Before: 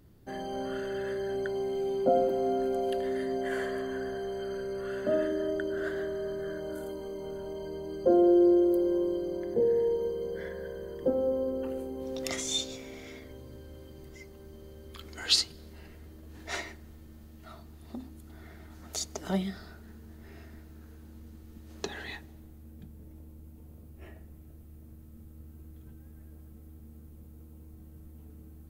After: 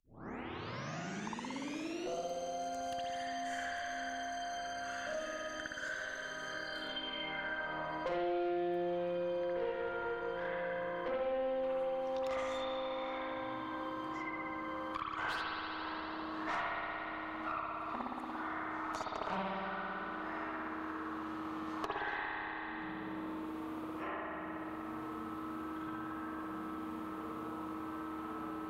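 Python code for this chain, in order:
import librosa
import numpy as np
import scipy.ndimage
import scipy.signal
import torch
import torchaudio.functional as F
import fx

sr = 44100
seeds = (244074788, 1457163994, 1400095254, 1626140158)

y = fx.tape_start_head(x, sr, length_s=2.17)
y = fx.filter_sweep_bandpass(y, sr, from_hz=6300.0, to_hz=1100.0, start_s=6.45, end_s=7.74, q=4.6)
y = fx.tube_stage(y, sr, drive_db=46.0, bias=0.6)
y = fx.rev_spring(y, sr, rt60_s=1.8, pass_ms=(57,), chirp_ms=25, drr_db=-8.0)
y = fx.band_squash(y, sr, depth_pct=100)
y = F.gain(torch.from_numpy(y), 12.0).numpy()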